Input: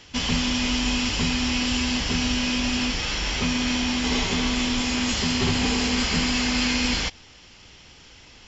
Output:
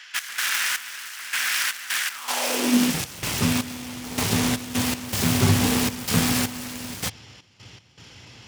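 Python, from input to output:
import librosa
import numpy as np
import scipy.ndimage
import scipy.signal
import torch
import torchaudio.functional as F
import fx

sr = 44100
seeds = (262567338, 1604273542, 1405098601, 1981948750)

y = fx.self_delay(x, sr, depth_ms=0.41)
y = fx.step_gate(y, sr, bpm=79, pattern='x.xx...xx.x.xxx', floor_db=-12.0, edge_ms=4.5)
y = fx.filter_sweep_highpass(y, sr, from_hz=1600.0, to_hz=110.0, start_s=2.1, end_s=3.04, q=3.4)
y = y * librosa.db_to_amplitude(2.0)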